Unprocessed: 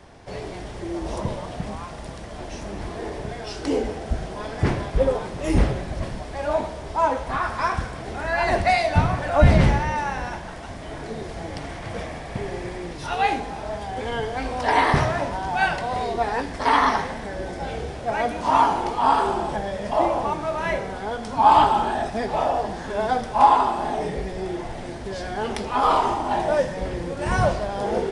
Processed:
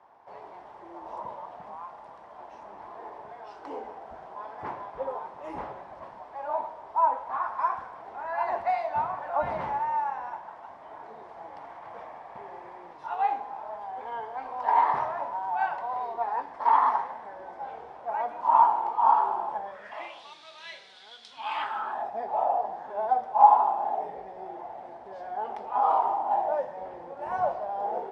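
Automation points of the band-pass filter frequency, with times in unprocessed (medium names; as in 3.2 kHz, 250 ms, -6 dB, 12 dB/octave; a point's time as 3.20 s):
band-pass filter, Q 3.7
19.65 s 930 Hz
20.23 s 3.8 kHz
21.27 s 3.8 kHz
22.11 s 800 Hz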